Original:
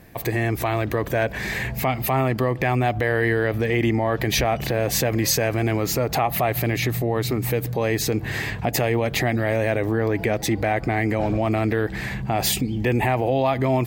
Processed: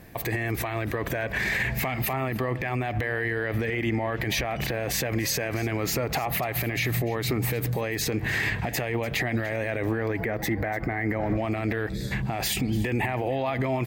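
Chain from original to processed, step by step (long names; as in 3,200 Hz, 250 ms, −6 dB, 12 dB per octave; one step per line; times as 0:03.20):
gain on a spectral selection 0:11.90–0:12.11, 610–3,300 Hz −23 dB
dynamic equaliser 2,000 Hz, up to +6 dB, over −40 dBFS, Q 1.1
gain on a spectral selection 0:10.19–0:11.37, 2,200–12,000 Hz −9 dB
brickwall limiter −17.5 dBFS, peak gain reduction 12 dB
single-tap delay 294 ms −18 dB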